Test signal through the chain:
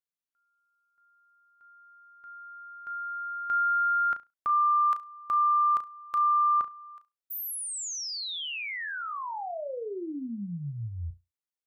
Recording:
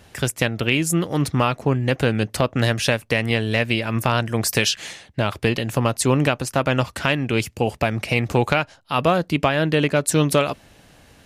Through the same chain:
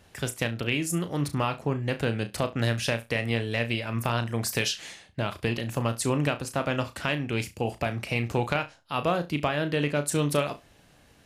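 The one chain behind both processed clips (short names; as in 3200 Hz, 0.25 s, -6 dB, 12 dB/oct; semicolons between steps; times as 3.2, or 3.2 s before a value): flutter echo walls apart 5.9 m, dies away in 0.21 s; gain -8 dB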